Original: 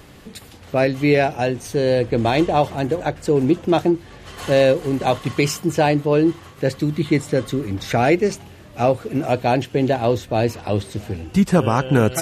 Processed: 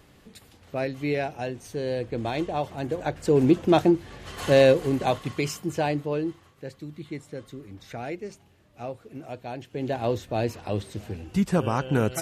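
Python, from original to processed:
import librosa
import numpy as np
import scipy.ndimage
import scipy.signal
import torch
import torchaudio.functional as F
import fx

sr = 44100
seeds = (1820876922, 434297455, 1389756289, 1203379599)

y = fx.gain(x, sr, db=fx.line((2.66, -11.0), (3.41, -2.0), (4.78, -2.0), (5.39, -9.0), (5.99, -9.0), (6.65, -18.0), (9.57, -18.0), (10.0, -7.5)))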